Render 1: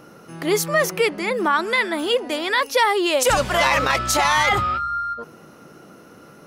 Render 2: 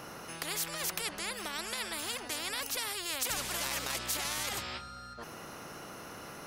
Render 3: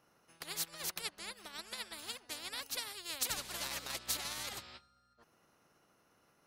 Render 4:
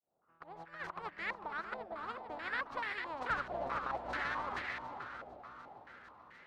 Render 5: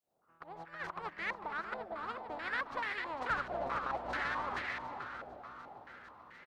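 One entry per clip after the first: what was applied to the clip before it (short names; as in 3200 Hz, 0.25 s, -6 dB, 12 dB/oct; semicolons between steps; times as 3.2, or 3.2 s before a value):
spectral compressor 4:1; gain -7.5 dB
dynamic EQ 4100 Hz, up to +5 dB, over -53 dBFS, Q 3.4; upward expander 2.5:1, over -47 dBFS; gain -1 dB
opening faded in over 1.27 s; swung echo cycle 0.749 s, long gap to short 1.5:1, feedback 38%, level -7 dB; stepped low-pass 4.6 Hz 700–1900 Hz; gain +3 dB
in parallel at -11 dB: soft clip -38 dBFS, distortion -10 dB; on the sum: echo 0.231 s -22 dB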